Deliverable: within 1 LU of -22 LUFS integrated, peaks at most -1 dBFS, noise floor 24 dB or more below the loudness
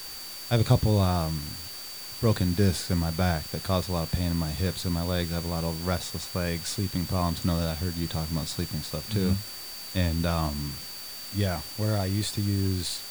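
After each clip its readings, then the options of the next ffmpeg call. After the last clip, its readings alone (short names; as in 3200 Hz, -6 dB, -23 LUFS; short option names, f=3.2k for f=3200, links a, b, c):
steady tone 4600 Hz; tone level -40 dBFS; noise floor -39 dBFS; noise floor target -53 dBFS; loudness -28.5 LUFS; peak -8.5 dBFS; loudness target -22.0 LUFS
-> -af "bandreject=f=4.6k:w=30"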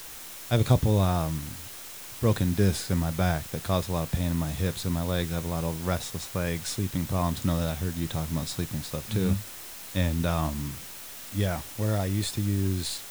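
steady tone none; noise floor -42 dBFS; noise floor target -53 dBFS
-> -af "afftdn=nr=11:nf=-42"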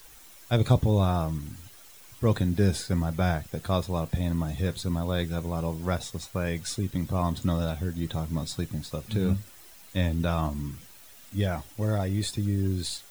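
noise floor -50 dBFS; noise floor target -53 dBFS
-> -af "afftdn=nr=6:nf=-50"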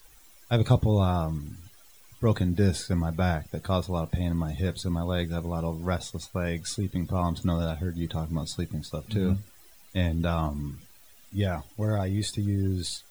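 noise floor -54 dBFS; loudness -28.5 LUFS; peak -9.0 dBFS; loudness target -22.0 LUFS
-> -af "volume=6.5dB"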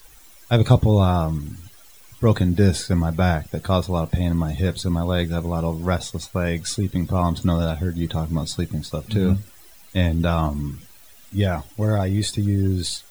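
loudness -22.0 LUFS; peak -2.5 dBFS; noise floor -47 dBFS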